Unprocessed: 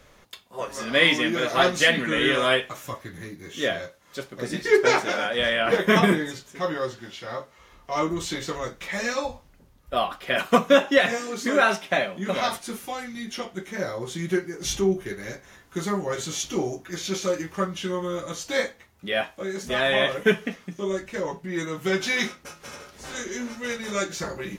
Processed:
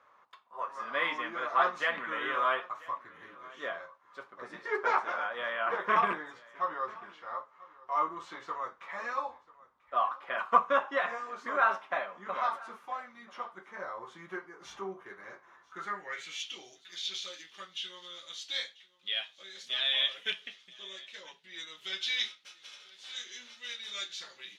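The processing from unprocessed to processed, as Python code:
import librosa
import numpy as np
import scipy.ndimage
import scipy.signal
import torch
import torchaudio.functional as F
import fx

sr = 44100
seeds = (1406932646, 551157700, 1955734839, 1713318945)

p1 = fx.rattle_buzz(x, sr, strikes_db=-22.0, level_db=-15.0)
p2 = p1 + fx.echo_single(p1, sr, ms=990, db=-21.5, dry=0)
p3 = fx.filter_sweep_bandpass(p2, sr, from_hz=1100.0, to_hz=3500.0, start_s=15.65, end_s=16.62, q=3.8)
y = p3 * 10.0 ** (2.0 / 20.0)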